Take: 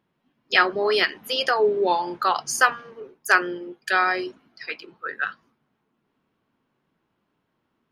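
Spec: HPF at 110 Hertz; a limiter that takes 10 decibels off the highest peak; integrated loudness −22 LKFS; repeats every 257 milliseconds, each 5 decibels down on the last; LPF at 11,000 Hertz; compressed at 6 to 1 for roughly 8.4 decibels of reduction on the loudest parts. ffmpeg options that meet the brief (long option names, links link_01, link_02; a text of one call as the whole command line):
ffmpeg -i in.wav -af "highpass=110,lowpass=11000,acompressor=threshold=-21dB:ratio=6,alimiter=limit=-18dB:level=0:latency=1,aecho=1:1:257|514|771|1028|1285|1542|1799:0.562|0.315|0.176|0.0988|0.0553|0.031|0.0173,volume=6.5dB" out.wav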